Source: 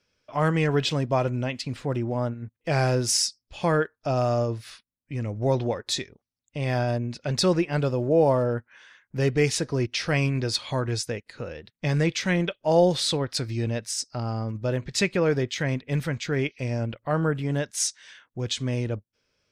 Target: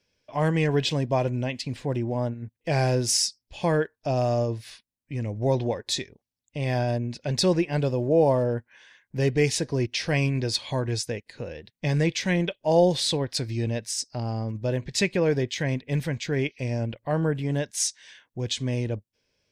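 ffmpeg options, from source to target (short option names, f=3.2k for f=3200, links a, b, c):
-af "equalizer=f=1.3k:t=o:w=0.27:g=-13.5"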